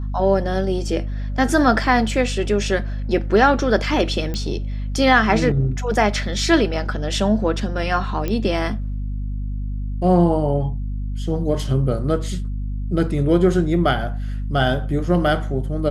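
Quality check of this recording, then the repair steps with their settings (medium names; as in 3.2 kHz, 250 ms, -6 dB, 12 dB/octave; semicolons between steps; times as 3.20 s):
hum 50 Hz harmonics 5 -25 dBFS
4.34 s: pop -13 dBFS
8.28 s: pop -11 dBFS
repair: de-click; de-hum 50 Hz, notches 5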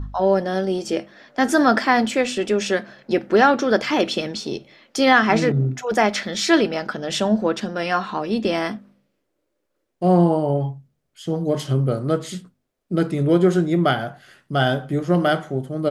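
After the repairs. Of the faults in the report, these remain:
nothing left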